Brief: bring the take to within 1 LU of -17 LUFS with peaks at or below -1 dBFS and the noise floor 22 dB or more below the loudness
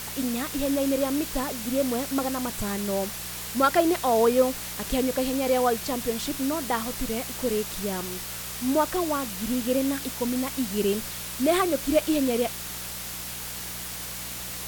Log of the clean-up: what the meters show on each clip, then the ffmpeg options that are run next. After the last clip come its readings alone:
hum 60 Hz; highest harmonic 180 Hz; hum level -44 dBFS; noise floor -36 dBFS; noise floor target -49 dBFS; loudness -26.5 LUFS; peak level -8.0 dBFS; loudness target -17.0 LUFS
-> -af "bandreject=f=60:t=h:w=4,bandreject=f=120:t=h:w=4,bandreject=f=180:t=h:w=4"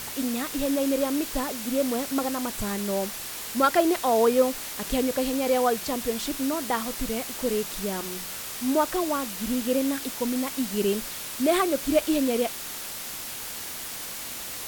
hum not found; noise floor -36 dBFS; noise floor target -49 dBFS
-> -af "afftdn=nr=13:nf=-36"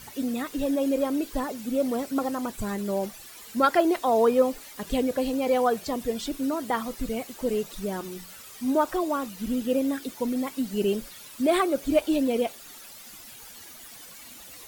noise floor -46 dBFS; noise floor target -49 dBFS
-> -af "afftdn=nr=6:nf=-46"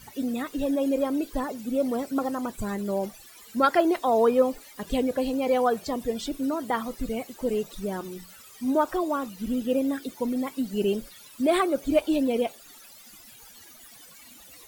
noise floor -50 dBFS; loudness -27.0 LUFS; peak level -9.0 dBFS; loudness target -17.0 LUFS
-> -af "volume=3.16,alimiter=limit=0.891:level=0:latency=1"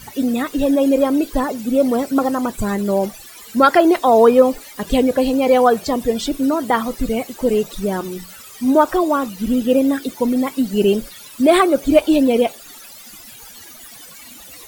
loudness -17.0 LUFS; peak level -1.0 dBFS; noise floor -40 dBFS

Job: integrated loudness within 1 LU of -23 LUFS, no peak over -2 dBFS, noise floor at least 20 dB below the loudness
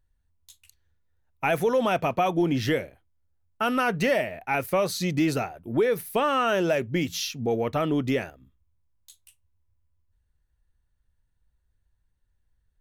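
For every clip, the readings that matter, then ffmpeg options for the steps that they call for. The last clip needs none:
loudness -25.5 LUFS; peak level -12.0 dBFS; loudness target -23.0 LUFS
-> -af "volume=1.33"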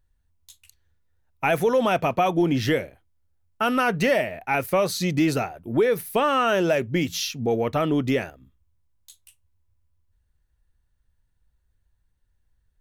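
loudness -23.0 LUFS; peak level -9.5 dBFS; noise floor -71 dBFS

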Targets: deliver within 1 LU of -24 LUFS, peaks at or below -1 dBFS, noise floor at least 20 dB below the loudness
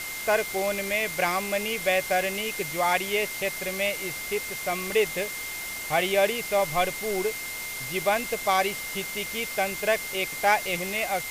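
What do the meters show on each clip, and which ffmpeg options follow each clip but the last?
steady tone 2.1 kHz; tone level -35 dBFS; noise floor -35 dBFS; noise floor target -47 dBFS; loudness -26.5 LUFS; peak level -8.5 dBFS; loudness target -24.0 LUFS
-> -af "bandreject=f=2100:w=30"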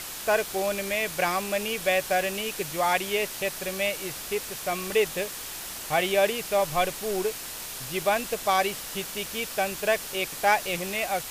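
steady tone not found; noise floor -38 dBFS; noise floor target -47 dBFS
-> -af "afftdn=nr=9:nf=-38"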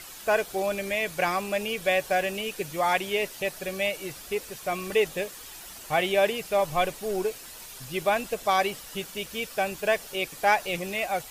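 noise floor -44 dBFS; noise floor target -48 dBFS
-> -af "afftdn=nr=6:nf=-44"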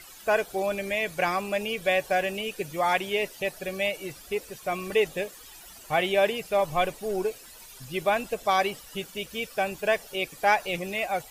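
noise floor -48 dBFS; loudness -27.5 LUFS; peak level -8.5 dBFS; loudness target -24.0 LUFS
-> -af "volume=1.5"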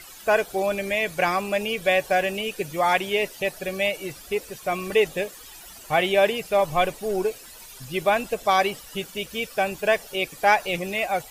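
loudness -24.0 LUFS; peak level -5.0 dBFS; noise floor -44 dBFS

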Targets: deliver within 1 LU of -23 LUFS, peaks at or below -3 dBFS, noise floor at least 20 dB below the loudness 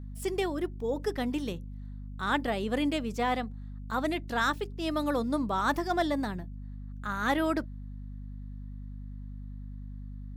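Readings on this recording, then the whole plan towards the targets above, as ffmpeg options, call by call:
hum 50 Hz; highest harmonic 250 Hz; hum level -38 dBFS; loudness -31.0 LUFS; peak level -15.0 dBFS; loudness target -23.0 LUFS
-> -af "bandreject=f=50:t=h:w=6,bandreject=f=100:t=h:w=6,bandreject=f=150:t=h:w=6,bandreject=f=200:t=h:w=6,bandreject=f=250:t=h:w=6"
-af "volume=2.51"

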